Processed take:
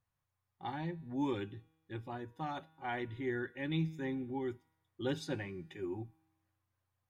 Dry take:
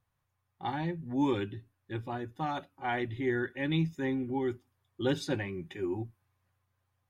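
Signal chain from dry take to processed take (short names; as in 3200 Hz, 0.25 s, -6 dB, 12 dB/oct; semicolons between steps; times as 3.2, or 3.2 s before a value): resonator 160 Hz, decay 1.2 s, mix 40%; gain -2 dB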